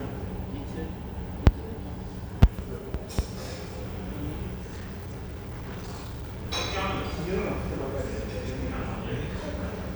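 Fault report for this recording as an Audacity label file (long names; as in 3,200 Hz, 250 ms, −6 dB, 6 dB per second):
4.540000	6.460000	clipping −33.5 dBFS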